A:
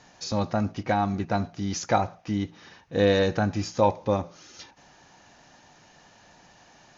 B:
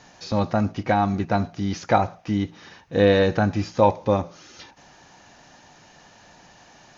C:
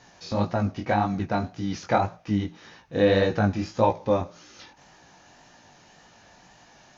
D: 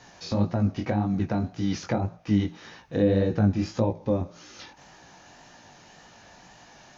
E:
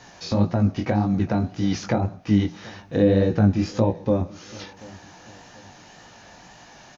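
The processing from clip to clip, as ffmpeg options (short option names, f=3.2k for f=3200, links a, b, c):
-filter_complex "[0:a]acrossover=split=4300[a][b];[b]acompressor=threshold=-54dB:ratio=4:attack=1:release=60[c];[a][c]amix=inputs=2:normalize=0,volume=4dB"
-af "flanger=delay=16.5:depth=7:speed=1.8"
-filter_complex "[0:a]acrossover=split=430[a][b];[b]acompressor=threshold=-36dB:ratio=10[c];[a][c]amix=inputs=2:normalize=0,volume=2.5dB"
-af "aecho=1:1:735|1470|2205:0.0794|0.0302|0.0115,volume=4dB"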